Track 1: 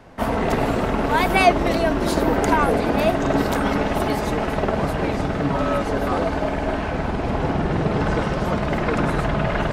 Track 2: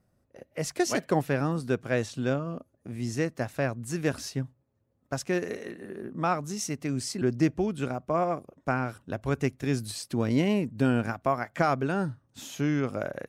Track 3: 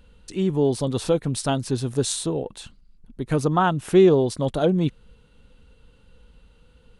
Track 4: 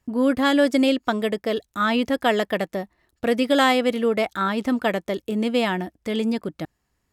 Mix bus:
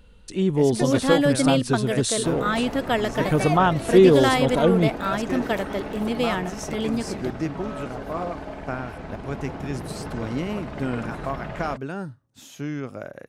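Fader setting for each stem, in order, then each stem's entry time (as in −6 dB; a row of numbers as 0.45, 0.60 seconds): −12.5, −3.5, +1.0, −3.0 decibels; 2.05, 0.00, 0.00, 0.65 seconds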